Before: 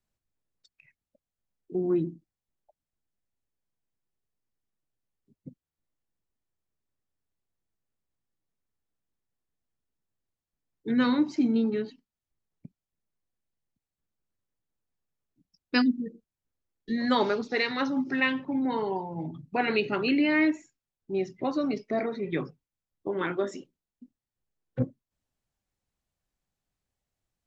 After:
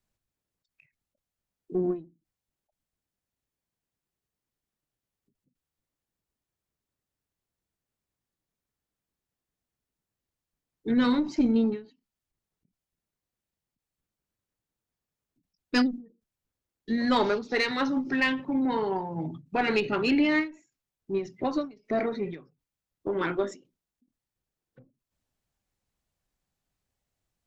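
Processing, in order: one diode to ground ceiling -18 dBFS; ending taper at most 180 dB/s; gain +2.5 dB

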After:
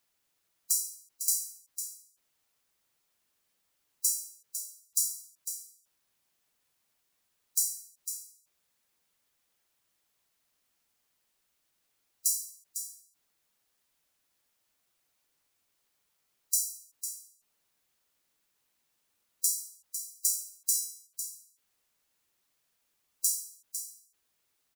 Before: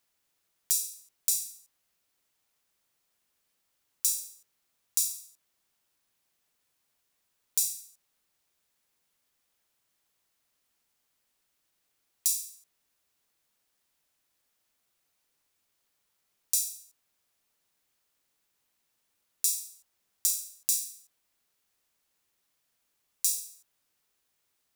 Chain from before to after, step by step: echo 0.502 s -9.5 dB; spectral gate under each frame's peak -15 dB strong

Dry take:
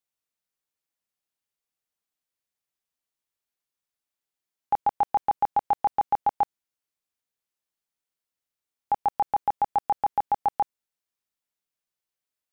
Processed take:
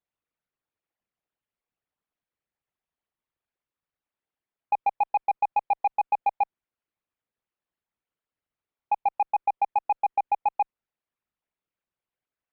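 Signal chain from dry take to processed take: formant sharpening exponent 2; wow and flutter 24 cents; in parallel at -5 dB: sine folder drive 5 dB, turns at -15 dBFS; on the sum: added harmonics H 7 -42 dB, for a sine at -13 dBFS; air absorption 450 m; gain -3 dB

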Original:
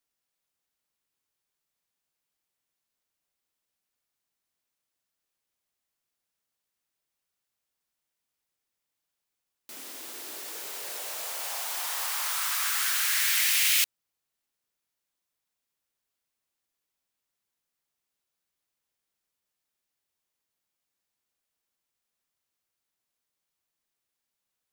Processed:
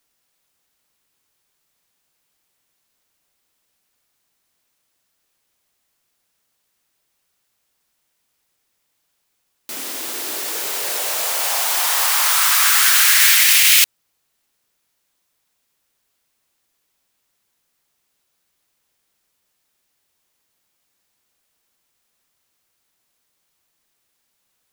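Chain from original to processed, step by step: maximiser +15 dB; gain -1 dB

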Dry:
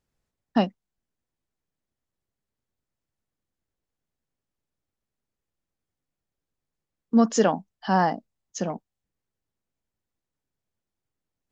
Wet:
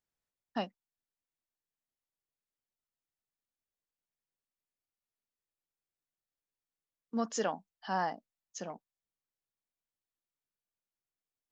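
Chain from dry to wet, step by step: low shelf 390 Hz -10.5 dB; gain -8.5 dB

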